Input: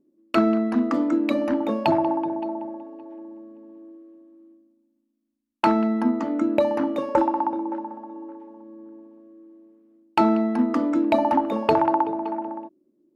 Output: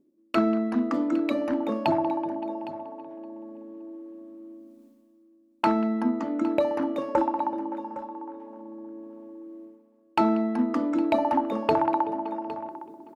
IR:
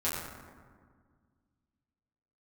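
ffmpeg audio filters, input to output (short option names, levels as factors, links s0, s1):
-af "areverse,acompressor=mode=upward:threshold=0.0355:ratio=2.5,areverse,aecho=1:1:810:0.158,volume=0.668"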